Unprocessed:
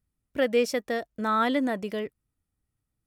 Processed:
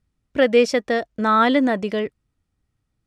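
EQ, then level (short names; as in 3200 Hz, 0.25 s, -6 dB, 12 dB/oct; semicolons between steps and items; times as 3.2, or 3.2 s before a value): LPF 6300 Hz 12 dB/oct; +8.0 dB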